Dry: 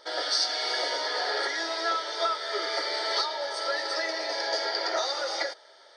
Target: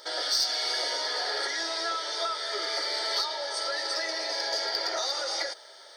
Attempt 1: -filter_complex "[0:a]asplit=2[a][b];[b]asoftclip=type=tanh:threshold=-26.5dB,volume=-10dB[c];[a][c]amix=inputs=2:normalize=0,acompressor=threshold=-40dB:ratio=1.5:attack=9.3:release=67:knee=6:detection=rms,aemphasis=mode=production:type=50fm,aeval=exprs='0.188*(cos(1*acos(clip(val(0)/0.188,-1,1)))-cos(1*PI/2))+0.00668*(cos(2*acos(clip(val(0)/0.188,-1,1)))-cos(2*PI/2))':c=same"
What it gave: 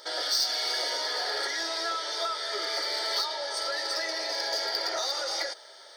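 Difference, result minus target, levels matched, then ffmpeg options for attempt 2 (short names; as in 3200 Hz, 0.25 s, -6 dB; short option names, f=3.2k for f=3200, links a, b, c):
soft clip: distortion +8 dB
-filter_complex "[0:a]asplit=2[a][b];[b]asoftclip=type=tanh:threshold=-19.5dB,volume=-10dB[c];[a][c]amix=inputs=2:normalize=0,acompressor=threshold=-40dB:ratio=1.5:attack=9.3:release=67:knee=6:detection=rms,aemphasis=mode=production:type=50fm,aeval=exprs='0.188*(cos(1*acos(clip(val(0)/0.188,-1,1)))-cos(1*PI/2))+0.00668*(cos(2*acos(clip(val(0)/0.188,-1,1)))-cos(2*PI/2))':c=same"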